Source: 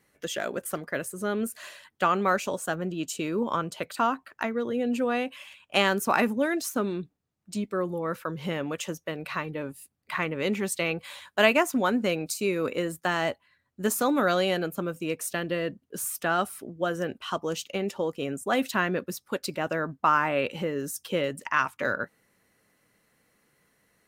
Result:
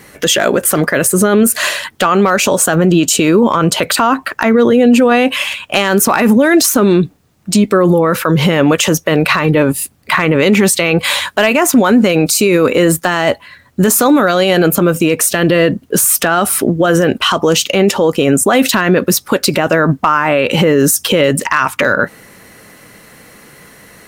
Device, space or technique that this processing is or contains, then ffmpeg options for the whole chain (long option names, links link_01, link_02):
loud club master: -af "acompressor=threshold=-27dB:ratio=2.5,asoftclip=type=hard:threshold=-18dB,alimiter=level_in=29dB:limit=-1dB:release=50:level=0:latency=1,volume=-1dB"